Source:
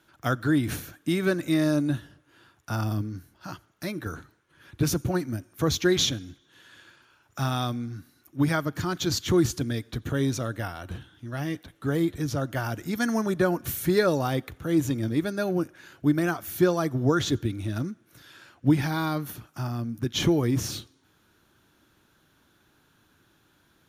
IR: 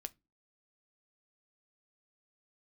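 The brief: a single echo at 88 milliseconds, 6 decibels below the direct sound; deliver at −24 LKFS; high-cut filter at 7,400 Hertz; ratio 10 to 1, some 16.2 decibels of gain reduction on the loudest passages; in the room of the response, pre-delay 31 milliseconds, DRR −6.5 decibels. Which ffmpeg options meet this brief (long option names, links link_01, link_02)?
-filter_complex "[0:a]lowpass=7400,acompressor=threshold=-33dB:ratio=10,aecho=1:1:88:0.501,asplit=2[link_01][link_02];[1:a]atrim=start_sample=2205,adelay=31[link_03];[link_02][link_03]afir=irnorm=-1:irlink=0,volume=10.5dB[link_04];[link_01][link_04]amix=inputs=2:normalize=0,volume=5.5dB"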